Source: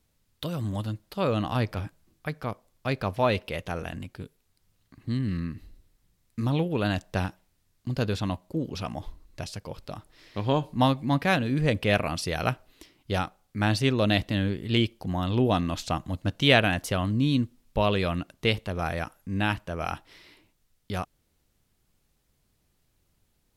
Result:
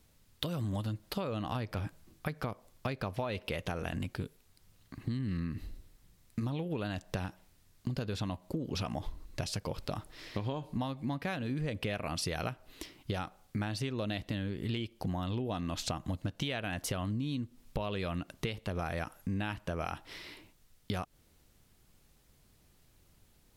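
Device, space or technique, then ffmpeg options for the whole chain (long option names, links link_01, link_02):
serial compression, peaks first: -af "acompressor=threshold=-33dB:ratio=6,acompressor=threshold=-38dB:ratio=3,volume=5.5dB"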